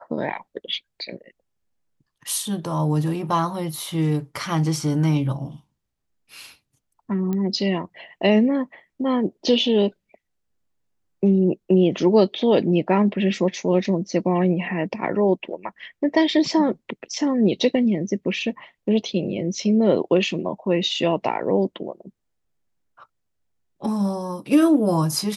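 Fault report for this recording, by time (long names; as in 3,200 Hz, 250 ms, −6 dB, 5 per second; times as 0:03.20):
0:07.33: click −16 dBFS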